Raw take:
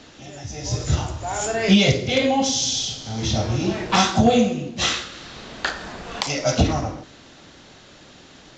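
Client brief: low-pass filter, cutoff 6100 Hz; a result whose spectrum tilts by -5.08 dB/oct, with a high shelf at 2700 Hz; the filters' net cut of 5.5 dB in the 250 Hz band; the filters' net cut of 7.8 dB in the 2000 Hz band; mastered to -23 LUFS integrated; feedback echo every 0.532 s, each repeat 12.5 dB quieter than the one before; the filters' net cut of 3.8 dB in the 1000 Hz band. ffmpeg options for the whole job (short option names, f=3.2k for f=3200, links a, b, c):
-af "lowpass=6.1k,equalizer=f=250:t=o:g=-7,equalizer=f=1k:t=o:g=-3,equalizer=f=2k:t=o:g=-6.5,highshelf=f=2.7k:g=-5.5,aecho=1:1:532|1064|1596:0.237|0.0569|0.0137,volume=2.5dB"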